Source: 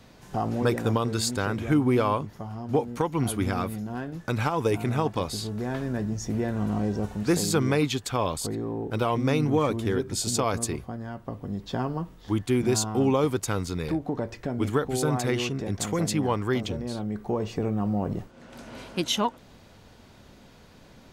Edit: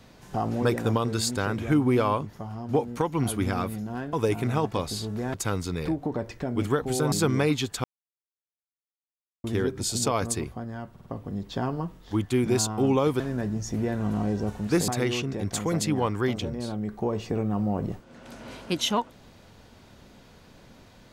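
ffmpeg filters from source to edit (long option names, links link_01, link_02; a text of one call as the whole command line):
ffmpeg -i in.wav -filter_complex "[0:a]asplit=11[link_01][link_02][link_03][link_04][link_05][link_06][link_07][link_08][link_09][link_10][link_11];[link_01]atrim=end=4.132[link_12];[link_02]atrim=start=4.548:end=5.762[link_13];[link_03]atrim=start=13.368:end=15.152[link_14];[link_04]atrim=start=7.438:end=8.16,asetpts=PTS-STARTPTS,afade=type=out:start_time=0.718:duration=0.004:curve=hsin[link_15];[link_05]atrim=start=8.16:end=9.76,asetpts=PTS-STARTPTS,volume=0[link_16];[link_06]atrim=start=9.76:end=11.282,asetpts=PTS-STARTPTS,afade=type=in:duration=0.004:curve=hsin[link_17];[link_07]atrim=start=11.228:end=11.282[link_18];[link_08]atrim=start=11.228:end=11.282[link_19];[link_09]atrim=start=11.228:end=13.372[link_20];[link_10]atrim=start=5.758:end=7.442[link_21];[link_11]atrim=start=15.148[link_22];[link_12][link_13]acrossfade=duration=0.004:curve1=hsin:curve2=hsin[link_23];[link_23][link_14]acrossfade=duration=0.004:curve1=hsin:curve2=hsin[link_24];[link_15][link_16][link_17]concat=n=3:v=0:a=1[link_25];[link_24][link_25]acrossfade=duration=0.004:curve1=hsin:curve2=hsin[link_26];[link_26][link_18]acrossfade=duration=0.004:curve1=hsin:curve2=hsin[link_27];[link_27][link_19]acrossfade=duration=0.004:curve1=hsin:curve2=hsin[link_28];[link_28][link_20]acrossfade=duration=0.004:curve1=hsin:curve2=hsin[link_29];[link_29][link_21]acrossfade=duration=0.004:curve1=hsin:curve2=hsin[link_30];[link_30][link_22]acrossfade=duration=0.004:curve1=hsin:curve2=hsin" out.wav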